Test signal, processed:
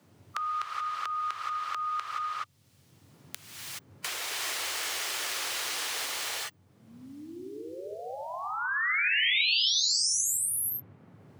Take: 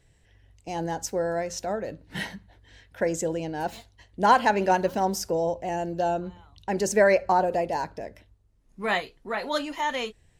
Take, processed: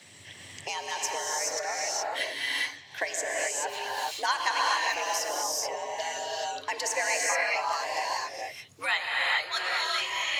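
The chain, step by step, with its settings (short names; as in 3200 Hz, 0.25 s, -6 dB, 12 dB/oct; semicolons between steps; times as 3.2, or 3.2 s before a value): HPF 250 Hz 24 dB/oct; high shelf 8600 Hz -10.5 dB; harmonic-percussive split harmonic -11 dB; tilt shelf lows -9 dB, about 1200 Hz; added noise brown -71 dBFS; frequency shift +86 Hz; non-linear reverb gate 0.45 s rising, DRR -4.5 dB; three-band squash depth 70%; gain -3 dB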